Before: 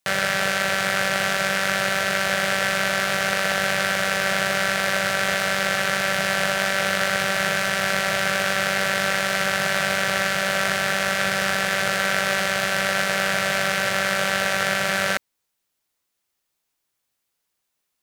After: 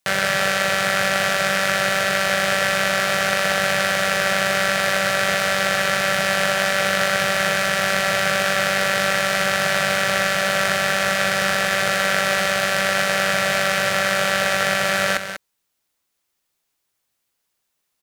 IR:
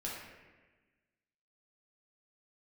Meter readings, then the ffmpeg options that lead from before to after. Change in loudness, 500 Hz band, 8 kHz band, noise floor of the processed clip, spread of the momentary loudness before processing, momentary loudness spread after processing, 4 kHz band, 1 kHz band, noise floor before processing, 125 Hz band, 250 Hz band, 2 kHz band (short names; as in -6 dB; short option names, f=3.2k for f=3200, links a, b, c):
+2.5 dB, +3.5 dB, +2.5 dB, -75 dBFS, 0 LU, 0 LU, +2.5 dB, +3.0 dB, -78 dBFS, +2.0 dB, +1.5 dB, +2.0 dB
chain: -af "aecho=1:1:193:0.335,volume=2dB"